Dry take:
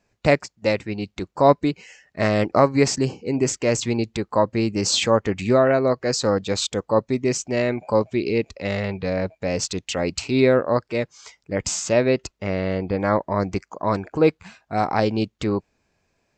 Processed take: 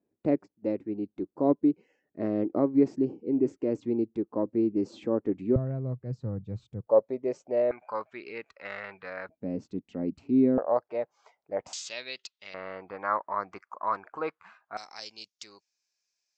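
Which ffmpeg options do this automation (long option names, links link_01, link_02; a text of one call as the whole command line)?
ffmpeg -i in.wav -af "asetnsamples=nb_out_samples=441:pad=0,asendcmd='5.56 bandpass f 120;6.87 bandpass f 560;7.71 bandpass f 1400;9.29 bandpass f 250;10.58 bandpass f 710;11.73 bandpass f 3700;12.54 bandpass f 1200;14.77 bandpass f 5600',bandpass=frequency=310:width_type=q:width=2.9:csg=0" out.wav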